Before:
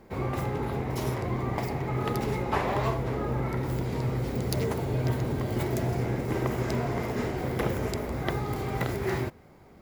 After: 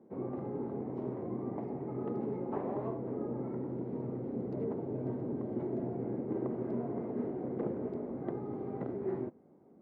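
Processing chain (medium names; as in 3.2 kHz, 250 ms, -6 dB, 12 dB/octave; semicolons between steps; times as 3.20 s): ladder band-pass 320 Hz, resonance 25%; trim +6.5 dB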